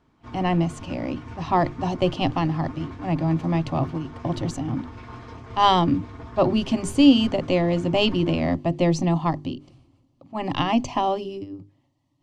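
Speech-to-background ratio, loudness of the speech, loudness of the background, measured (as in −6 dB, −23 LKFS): 17.0 dB, −23.5 LKFS, −40.5 LKFS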